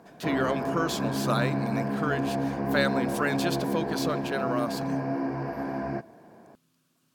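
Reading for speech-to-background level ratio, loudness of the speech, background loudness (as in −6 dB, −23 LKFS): −1.0 dB, −31.0 LKFS, −30.0 LKFS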